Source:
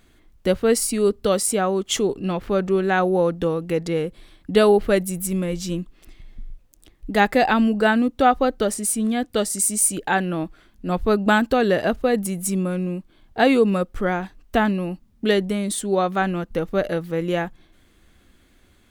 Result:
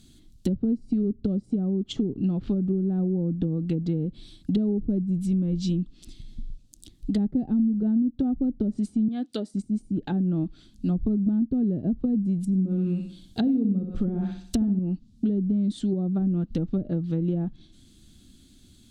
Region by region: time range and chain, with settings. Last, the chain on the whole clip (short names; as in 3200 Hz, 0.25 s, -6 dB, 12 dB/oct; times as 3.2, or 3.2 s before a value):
9.08–9.54 HPF 380 Hz + bell 10000 Hz +7.5 dB 0.4 oct
12.44–14.79 high shelf 4000 Hz +9.5 dB + flutter echo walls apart 10.9 m, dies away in 0.53 s
whole clip: treble ducked by the level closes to 380 Hz, closed at -17 dBFS; graphic EQ 125/250/500/1000/2000/4000/8000 Hz +6/+8/-10/-11/-12/+9/+6 dB; compressor 4:1, threshold -22 dBFS